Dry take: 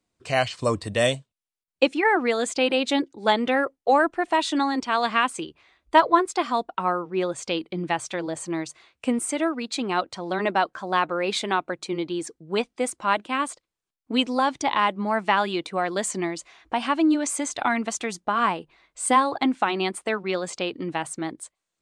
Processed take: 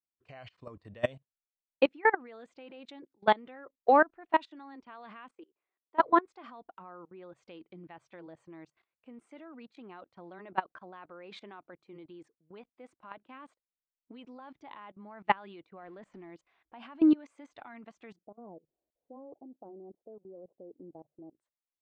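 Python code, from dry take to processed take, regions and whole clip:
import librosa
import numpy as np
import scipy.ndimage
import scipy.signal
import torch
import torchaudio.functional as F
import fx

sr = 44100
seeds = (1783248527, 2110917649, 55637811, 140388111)

y = fx.chain(x, sr, fx.ladder_highpass(hz=300.0, resonance_pct=40),
    fx.high_shelf(hz=2600.0, db=-5.5), at=(5.35, 6.0))
y = fx.chain(y, sr, fx.zero_step(step_db=-35.5),
    fx.high_shelf(hz=3600.0, db=-12.0), at=(15.83, 16.3))
y = fx.chain(y, sr, fx.law_mismatch(coded='mu'),
    fx.steep_lowpass(hz=610.0, slope=36),
    fx.tilt_eq(slope=3.5), at=(18.16, 21.35))
y = scipy.signal.sosfilt(scipy.signal.butter(2, 2400.0, 'lowpass', fs=sr, output='sos'), y)
y = fx.level_steps(y, sr, step_db=19)
y = fx.upward_expand(y, sr, threshold_db=-49.0, expansion=1.5)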